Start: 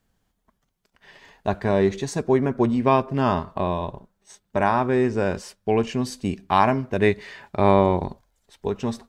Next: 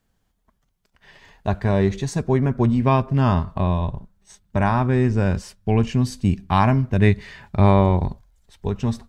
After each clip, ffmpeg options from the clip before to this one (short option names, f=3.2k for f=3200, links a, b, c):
-af "asubboost=boost=5.5:cutoff=170"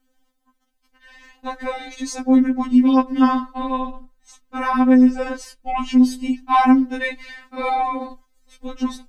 -af "afftfilt=real='re*3.46*eq(mod(b,12),0)':imag='im*3.46*eq(mod(b,12),0)':win_size=2048:overlap=0.75,volume=4.5dB"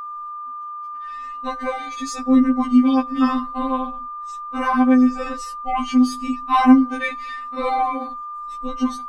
-af "afftfilt=real='re*pow(10,10/40*sin(2*PI*(2*log(max(b,1)*sr/1024/100)/log(2)-(0.97)*(pts-256)/sr)))':imag='im*pow(10,10/40*sin(2*PI*(2*log(max(b,1)*sr/1024/100)/log(2)-(0.97)*(pts-256)/sr)))':win_size=1024:overlap=0.75,equalizer=f=910:w=1.2:g=-2.5,aeval=exprs='val(0)+0.0398*sin(2*PI*1200*n/s)':c=same,volume=-1dB"